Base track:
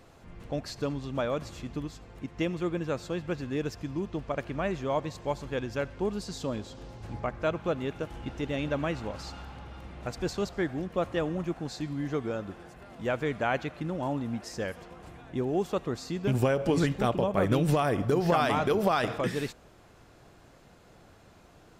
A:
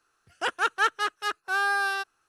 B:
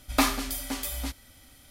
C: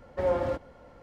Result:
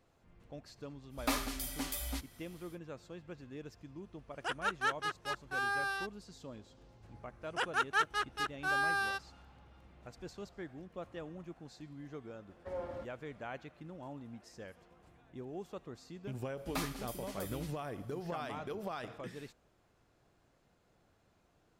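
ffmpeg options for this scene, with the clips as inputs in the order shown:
-filter_complex "[2:a]asplit=2[s0][s1];[1:a]asplit=2[s2][s3];[0:a]volume=0.168[s4];[s0]dynaudnorm=f=180:g=3:m=2,atrim=end=1.7,asetpts=PTS-STARTPTS,volume=0.251,afade=t=in:d=0.05,afade=t=out:st=1.65:d=0.05,adelay=1090[s5];[s2]atrim=end=2.28,asetpts=PTS-STARTPTS,volume=0.335,afade=t=in:d=0.004:c=hsin,afade=t=out:st=2.276:d=0.004:c=hsin,adelay=4030[s6];[s3]atrim=end=2.28,asetpts=PTS-STARTPTS,volume=0.447,afade=t=in:d=0.004:c=hsin,afade=t=out:st=2.276:d=0.004:c=hsin,adelay=7150[s7];[3:a]atrim=end=1.02,asetpts=PTS-STARTPTS,volume=0.188,afade=t=in:d=0.004:c=hsin,afade=t=out:st=1.016:d=0.004:c=hsin,adelay=12480[s8];[s1]atrim=end=1.7,asetpts=PTS-STARTPTS,volume=0.178,afade=t=in:d=0.004:c=hsin,afade=t=out:st=1.696:d=0.004:c=hsin,adelay=16570[s9];[s4][s5][s6][s7][s8][s9]amix=inputs=6:normalize=0"

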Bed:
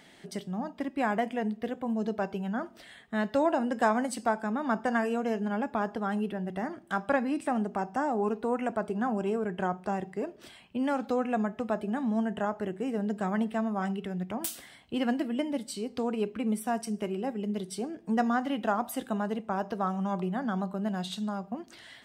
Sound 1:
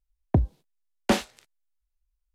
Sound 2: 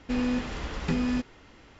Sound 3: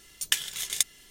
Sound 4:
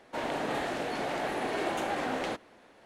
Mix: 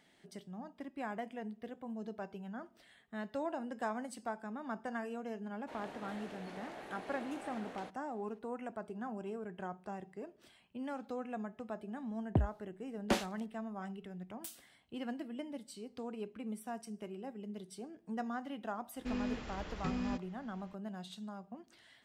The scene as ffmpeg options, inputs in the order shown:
-filter_complex "[0:a]volume=0.237[s0];[4:a]atrim=end=2.85,asetpts=PTS-STARTPTS,volume=0.158,afade=t=in:d=0.004:c=hsin,afade=t=out:st=2.846:d=0.004:c=hsin,adelay=5540[s1];[1:a]atrim=end=2.34,asetpts=PTS-STARTPTS,volume=0.355,afade=t=in:d=0.004:c=hsin,afade=t=out:st=2.336:d=0.004:c=hsin,adelay=12010[s2];[2:a]atrim=end=1.79,asetpts=PTS-STARTPTS,volume=0.299,afade=t=in:d=0.004:c=hsin,afade=t=out:st=1.786:d=0.004:c=hsin,adelay=18960[s3];[s0][s1][s2][s3]amix=inputs=4:normalize=0"

